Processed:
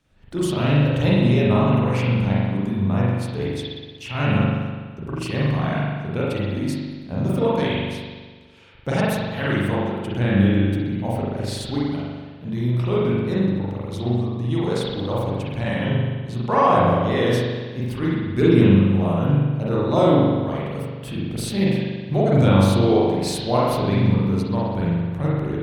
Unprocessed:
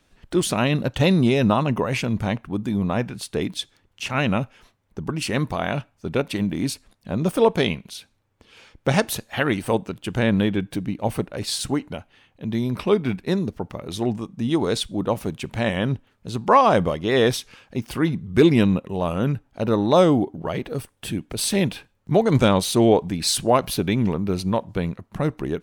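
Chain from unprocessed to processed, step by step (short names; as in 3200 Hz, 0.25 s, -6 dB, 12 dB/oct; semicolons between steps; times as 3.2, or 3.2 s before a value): bell 110 Hz +7 dB 1.4 oct; spring tank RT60 1.5 s, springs 41 ms, chirp 25 ms, DRR -7 dB; gain -8.5 dB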